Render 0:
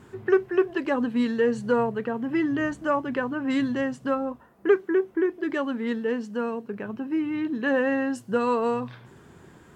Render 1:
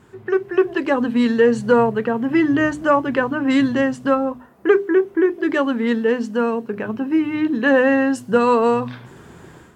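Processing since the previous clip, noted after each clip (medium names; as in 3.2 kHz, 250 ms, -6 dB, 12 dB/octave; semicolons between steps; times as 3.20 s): hum notches 50/100/150/200/250/300/350/400 Hz; level rider gain up to 9 dB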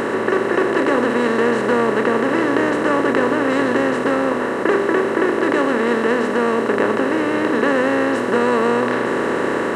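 spectral levelling over time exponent 0.2; trim -8.5 dB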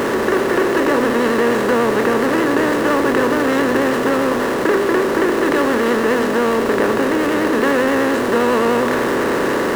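in parallel at -8 dB: Schmitt trigger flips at -31 dBFS; on the sum: vibrato 10 Hz 48 cents; trim -1 dB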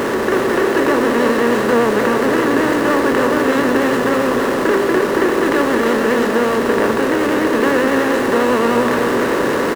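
delay 314 ms -6 dB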